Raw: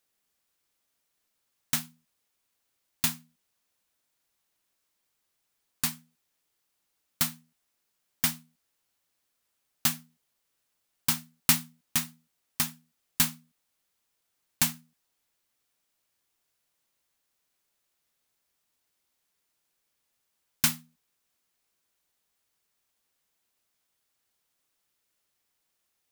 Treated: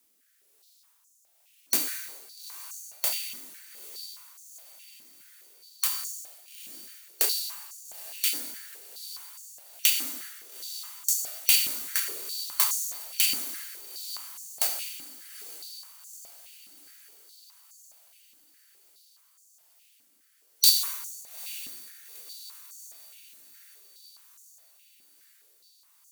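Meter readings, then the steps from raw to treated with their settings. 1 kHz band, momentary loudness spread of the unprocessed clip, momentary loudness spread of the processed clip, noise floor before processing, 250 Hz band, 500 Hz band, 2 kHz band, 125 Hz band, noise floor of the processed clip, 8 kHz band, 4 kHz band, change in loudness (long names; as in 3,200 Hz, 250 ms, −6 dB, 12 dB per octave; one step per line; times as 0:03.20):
−2.0 dB, 15 LU, 21 LU, −79 dBFS, −12.0 dB, +6.5 dB, +0.5 dB, below −20 dB, −65 dBFS, +4.0 dB, +6.5 dB, +1.5 dB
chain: band-splitting scrambler in four parts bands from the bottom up 2341
high-shelf EQ 7,000 Hz +12 dB
in parallel at +1.5 dB: output level in coarse steps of 21 dB
on the sum: brickwall limiter −4.5 dBFS, peak gain reduction 10.5 dB
downward compressor 2 to 1, threshold −28 dBFS, peak gain reduction 8.5 dB
rotating-speaker cabinet horn 1.1 Hz
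on a send: feedback delay with all-pass diffusion 873 ms, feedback 57%, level −14 dB
on the sum: dense smooth reverb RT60 1.5 s, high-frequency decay 0.9×, DRR 2.5 dB
high-pass on a step sequencer 4.8 Hz 260–6,700 Hz
level +5 dB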